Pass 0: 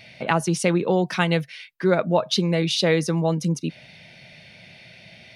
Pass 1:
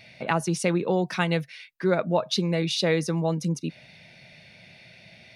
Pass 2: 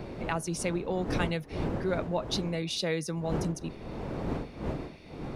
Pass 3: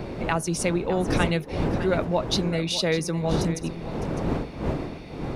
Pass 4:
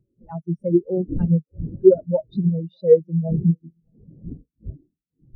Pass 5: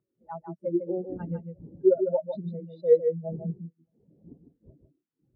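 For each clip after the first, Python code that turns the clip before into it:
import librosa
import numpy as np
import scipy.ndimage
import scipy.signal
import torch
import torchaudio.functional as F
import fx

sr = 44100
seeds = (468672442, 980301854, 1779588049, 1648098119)

y1 = fx.notch(x, sr, hz=3100.0, q=16.0)
y1 = y1 * librosa.db_to_amplitude(-3.5)
y2 = fx.dmg_wind(y1, sr, seeds[0], corner_hz=390.0, level_db=-29.0)
y2 = fx.high_shelf(y2, sr, hz=7300.0, db=8.0)
y2 = y2 * librosa.db_to_amplitude(-7.5)
y3 = y2 + 10.0 ** (-13.0 / 20.0) * np.pad(y2, (int(606 * sr / 1000.0), 0))[:len(y2)]
y3 = y3 * librosa.db_to_amplitude(6.5)
y4 = fx.spectral_expand(y3, sr, expansion=4.0)
y4 = y4 * librosa.db_to_amplitude(6.0)
y5 = fx.bandpass_q(y4, sr, hz=1200.0, q=1.1)
y5 = y5 + 10.0 ** (-7.5 / 20.0) * np.pad(y5, (int(152 * sr / 1000.0), 0))[:len(y5)]
y5 = y5 * librosa.db_to_amplitude(2.0)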